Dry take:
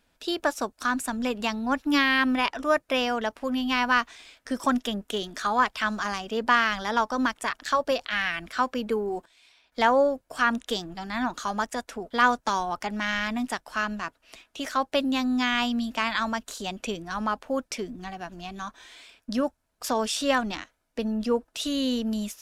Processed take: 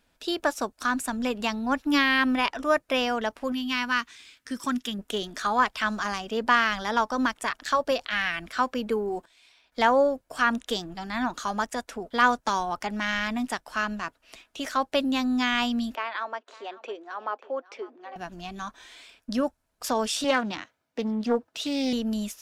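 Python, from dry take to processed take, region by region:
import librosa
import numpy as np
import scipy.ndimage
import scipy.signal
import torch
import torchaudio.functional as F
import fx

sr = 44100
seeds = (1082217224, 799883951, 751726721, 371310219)

y = fx.chain(x, sr, fx.highpass(hz=93.0, slope=6),
    fx.peak_eq(hz=650.0, db=-14.0, octaves=1.2), at=(3.52, 4.99))
y = fx.chain(y, sr, fx.steep_highpass(hz=350.0, slope=36),
    fx.spacing_loss(db_at_10k=32),
    fx.echo_single(ms=551, db=-19.5), at=(15.95, 18.16))
y = fx.chain(y, sr, fx.highpass(hz=82.0, slope=24),
    fx.peak_eq(hz=9900.0, db=-8.0, octaves=1.0),
    fx.doppler_dist(depth_ms=0.24), at=(20.24, 21.93))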